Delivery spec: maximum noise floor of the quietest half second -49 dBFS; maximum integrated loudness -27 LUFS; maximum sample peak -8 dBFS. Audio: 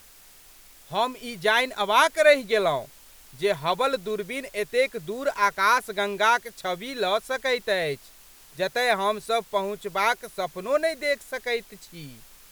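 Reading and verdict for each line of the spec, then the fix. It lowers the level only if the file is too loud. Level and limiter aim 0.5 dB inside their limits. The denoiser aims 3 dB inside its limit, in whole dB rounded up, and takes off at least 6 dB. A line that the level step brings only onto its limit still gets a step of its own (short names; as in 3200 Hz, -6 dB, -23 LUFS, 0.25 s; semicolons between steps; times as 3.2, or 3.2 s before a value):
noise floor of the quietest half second -51 dBFS: OK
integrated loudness -24.5 LUFS: fail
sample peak -4.0 dBFS: fail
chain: gain -3 dB; limiter -8.5 dBFS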